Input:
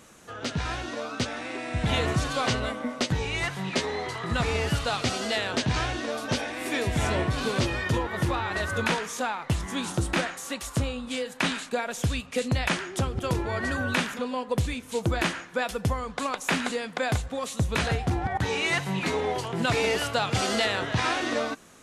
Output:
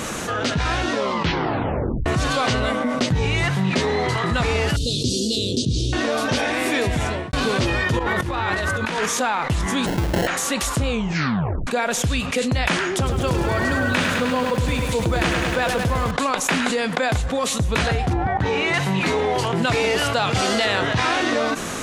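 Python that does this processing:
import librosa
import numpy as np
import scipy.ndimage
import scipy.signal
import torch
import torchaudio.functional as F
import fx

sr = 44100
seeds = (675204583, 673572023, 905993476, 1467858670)

y = fx.peak_eq(x, sr, hz=130.0, db=7.5, octaves=2.2, at=(2.94, 4.18))
y = fx.cheby2_bandstop(y, sr, low_hz=770.0, high_hz=2000.0, order=4, stop_db=50, at=(4.76, 5.93))
y = fx.over_compress(y, sr, threshold_db=-33.0, ratio=-0.5, at=(7.99, 9.06))
y = fx.sample_hold(y, sr, seeds[0], rate_hz=1200.0, jitter_pct=0, at=(9.85, 10.26), fade=0.02)
y = fx.echo_crushed(y, sr, ms=103, feedback_pct=80, bits=8, wet_db=-8.0, at=(12.94, 16.11))
y = fx.lowpass(y, sr, hz=2000.0, slope=6, at=(18.13, 18.74))
y = fx.edit(y, sr, fx.tape_stop(start_s=0.92, length_s=1.14),
    fx.fade_out_span(start_s=6.86, length_s=0.47, curve='qua'),
    fx.tape_stop(start_s=10.89, length_s=0.78), tone=tone)
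y = fx.high_shelf(y, sr, hz=8600.0, db=-5.0)
y = fx.env_flatten(y, sr, amount_pct=70)
y = y * librosa.db_to_amplitude(-1.5)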